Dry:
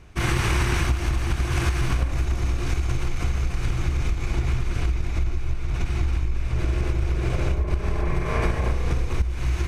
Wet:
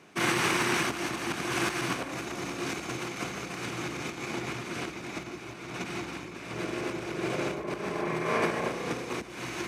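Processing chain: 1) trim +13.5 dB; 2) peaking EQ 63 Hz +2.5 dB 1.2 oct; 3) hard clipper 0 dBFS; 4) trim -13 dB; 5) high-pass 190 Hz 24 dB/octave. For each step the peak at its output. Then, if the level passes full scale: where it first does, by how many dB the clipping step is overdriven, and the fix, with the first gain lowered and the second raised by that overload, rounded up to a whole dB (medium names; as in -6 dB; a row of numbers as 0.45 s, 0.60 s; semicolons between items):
+4.5 dBFS, +5.0 dBFS, 0.0 dBFS, -13.0 dBFS, -14.0 dBFS; step 1, 5.0 dB; step 1 +8.5 dB, step 4 -8 dB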